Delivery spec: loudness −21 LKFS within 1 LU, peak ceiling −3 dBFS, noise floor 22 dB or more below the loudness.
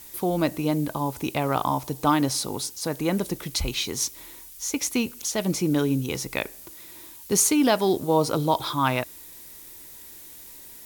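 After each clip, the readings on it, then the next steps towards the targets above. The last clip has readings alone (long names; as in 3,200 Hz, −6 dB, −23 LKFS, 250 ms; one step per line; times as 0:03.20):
background noise floor −45 dBFS; target noise floor −47 dBFS; integrated loudness −25.0 LKFS; sample peak −7.5 dBFS; target loudness −21.0 LKFS
→ noise reduction from a noise print 6 dB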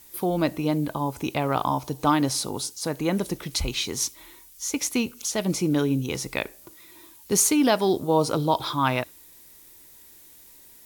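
background noise floor −51 dBFS; integrated loudness −25.0 LKFS; sample peak −7.5 dBFS; target loudness −21.0 LKFS
→ level +4 dB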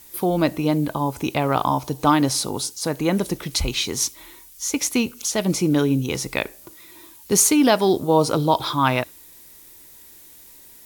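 integrated loudness −21.0 LKFS; sample peak −3.5 dBFS; background noise floor −47 dBFS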